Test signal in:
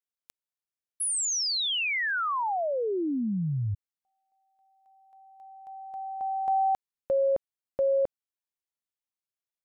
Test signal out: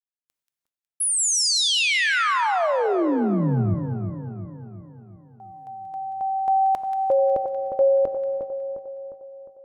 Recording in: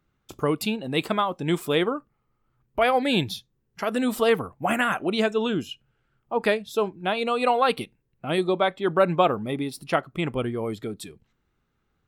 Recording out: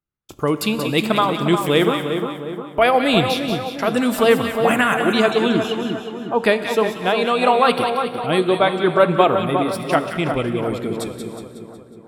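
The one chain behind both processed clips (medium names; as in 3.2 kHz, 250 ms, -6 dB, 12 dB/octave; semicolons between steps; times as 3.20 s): gate with hold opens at -46 dBFS, range -20 dB; level rider gain up to 4 dB; on a send: two-band feedback delay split 1.4 kHz, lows 355 ms, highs 183 ms, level -7 dB; on the sum: gated-style reverb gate 410 ms flat, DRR 11 dB; trim +2 dB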